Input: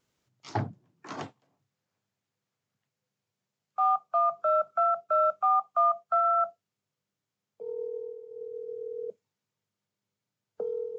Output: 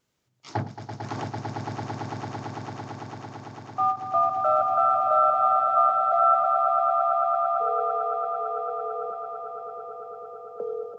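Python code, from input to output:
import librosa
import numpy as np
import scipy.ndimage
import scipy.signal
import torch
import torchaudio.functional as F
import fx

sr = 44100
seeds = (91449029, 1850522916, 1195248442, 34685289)

y = fx.echo_swell(x, sr, ms=112, loudest=8, wet_db=-6.5)
y = fx.end_taper(y, sr, db_per_s=210.0)
y = F.gain(torch.from_numpy(y), 1.5).numpy()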